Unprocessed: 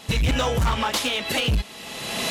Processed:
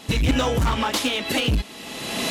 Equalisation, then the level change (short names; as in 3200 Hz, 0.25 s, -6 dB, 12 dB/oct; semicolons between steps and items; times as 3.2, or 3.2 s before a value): bell 290 Hz +7.5 dB 0.68 oct; 0.0 dB